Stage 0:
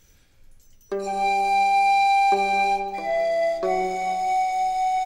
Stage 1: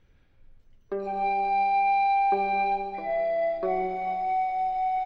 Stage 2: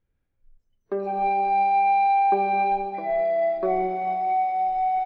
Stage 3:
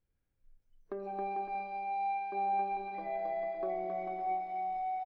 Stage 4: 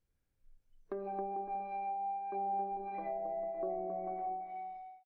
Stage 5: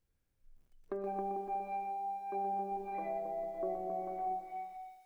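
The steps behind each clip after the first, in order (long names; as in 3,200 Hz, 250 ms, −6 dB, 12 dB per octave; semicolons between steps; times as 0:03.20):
high-frequency loss of the air 400 metres; delay with a high-pass on its return 134 ms, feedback 68%, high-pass 4,700 Hz, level −6 dB; level −2.5 dB
noise reduction from a noise print of the clip's start 18 dB; high-shelf EQ 3,000 Hz −10 dB; level +4 dB
downward compressor 2.5 to 1, threshold −34 dBFS, peak gain reduction 11.5 dB; bouncing-ball delay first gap 270 ms, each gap 0.65×, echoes 5; level −6.5 dB
fade-out on the ending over 1.00 s; treble cut that deepens with the level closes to 720 Hz, closed at −33 dBFS
feedback echo at a low word length 122 ms, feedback 35%, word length 11 bits, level −9 dB; level +1 dB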